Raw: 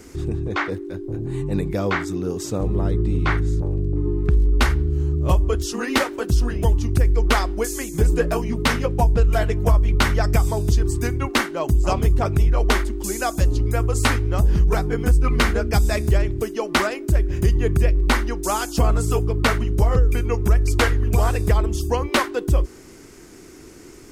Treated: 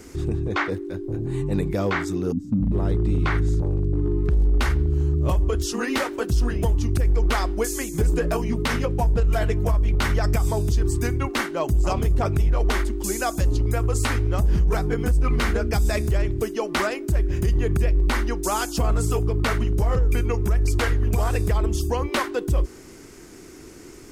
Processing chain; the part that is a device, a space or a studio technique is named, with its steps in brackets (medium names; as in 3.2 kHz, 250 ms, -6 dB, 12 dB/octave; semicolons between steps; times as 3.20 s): 2.32–2.72 s: FFT filter 130 Hz 0 dB, 260 Hz +14 dB, 370 Hz -29 dB; limiter into clipper (peak limiter -13 dBFS, peak gain reduction 7.5 dB; hard clipper -14 dBFS, distortion -33 dB)